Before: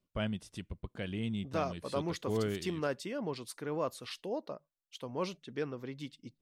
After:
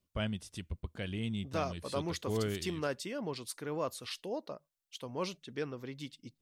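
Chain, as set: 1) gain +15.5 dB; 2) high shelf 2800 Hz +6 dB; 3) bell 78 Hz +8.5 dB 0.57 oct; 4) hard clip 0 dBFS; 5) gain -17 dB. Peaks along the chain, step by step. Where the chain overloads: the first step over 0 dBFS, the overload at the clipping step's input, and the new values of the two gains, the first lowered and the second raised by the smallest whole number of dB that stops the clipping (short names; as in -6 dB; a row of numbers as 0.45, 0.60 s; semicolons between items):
-5.5, -4.0, -4.5, -4.5, -21.5 dBFS; no overload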